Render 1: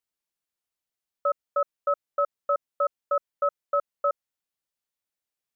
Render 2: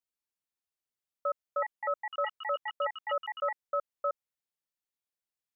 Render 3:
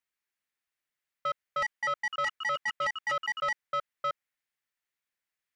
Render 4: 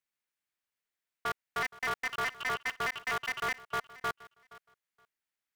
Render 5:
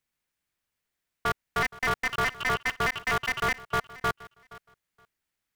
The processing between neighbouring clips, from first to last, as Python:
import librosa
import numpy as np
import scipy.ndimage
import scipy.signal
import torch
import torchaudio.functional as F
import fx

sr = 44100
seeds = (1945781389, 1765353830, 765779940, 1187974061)

y1 = fx.echo_pitch(x, sr, ms=785, semitones=7, count=2, db_per_echo=-6.0)
y1 = y1 * 10.0 ** (-6.5 / 20.0)
y2 = fx.peak_eq(y1, sr, hz=1900.0, db=11.5, octaves=1.2)
y2 = 10.0 ** (-25.5 / 20.0) * np.tanh(y2 / 10.0 ** (-25.5 / 20.0))
y3 = fx.echo_feedback(y2, sr, ms=471, feedback_pct=19, wet_db=-19.5)
y3 = y3 * np.sign(np.sin(2.0 * np.pi * 130.0 * np.arange(len(y3)) / sr))
y3 = y3 * 10.0 ** (-2.5 / 20.0)
y4 = fx.low_shelf(y3, sr, hz=220.0, db=11.0)
y4 = y4 * 10.0 ** (5.5 / 20.0)